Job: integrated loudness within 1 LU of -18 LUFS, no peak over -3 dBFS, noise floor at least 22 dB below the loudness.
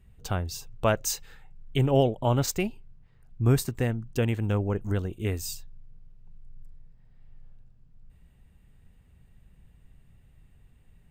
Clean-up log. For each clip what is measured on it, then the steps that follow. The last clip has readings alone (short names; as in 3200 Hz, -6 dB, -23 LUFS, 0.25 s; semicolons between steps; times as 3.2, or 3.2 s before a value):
loudness -28.0 LUFS; peak -10.5 dBFS; loudness target -18.0 LUFS
-> gain +10 dB; limiter -3 dBFS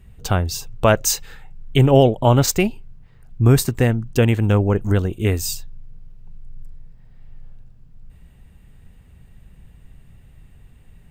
loudness -18.0 LUFS; peak -3.0 dBFS; noise floor -49 dBFS